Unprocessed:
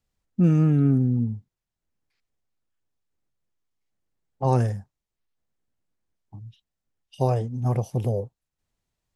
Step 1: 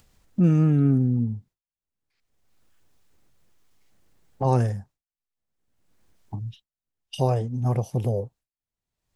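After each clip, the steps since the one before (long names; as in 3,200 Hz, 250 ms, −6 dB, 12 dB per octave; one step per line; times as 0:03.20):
downward expander −45 dBFS
upward compression, threshold −23 dBFS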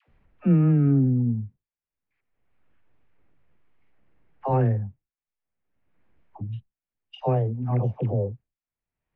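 Chebyshev low-pass filter 2,400 Hz, order 3
all-pass dispersion lows, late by 85 ms, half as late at 580 Hz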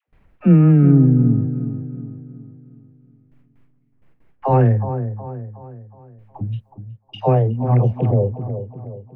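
noise gate with hold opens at −54 dBFS
on a send: delay with a low-pass on its return 367 ms, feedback 45%, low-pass 1,300 Hz, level −10 dB
on the sum: level +7.5 dB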